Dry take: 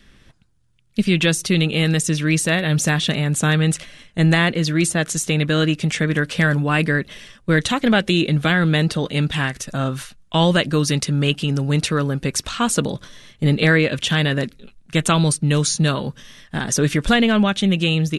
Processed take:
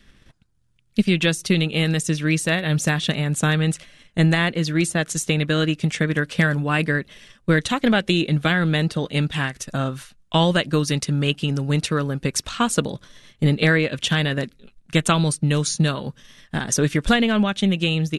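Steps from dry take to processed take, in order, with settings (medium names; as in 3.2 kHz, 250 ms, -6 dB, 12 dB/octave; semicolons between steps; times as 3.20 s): transient shaper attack +4 dB, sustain -4 dB; trim -3 dB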